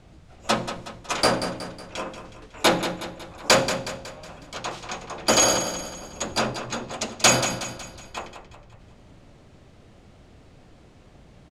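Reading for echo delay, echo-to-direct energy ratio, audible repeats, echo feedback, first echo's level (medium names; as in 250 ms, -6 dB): 184 ms, -9.0 dB, 4, 47%, -10.0 dB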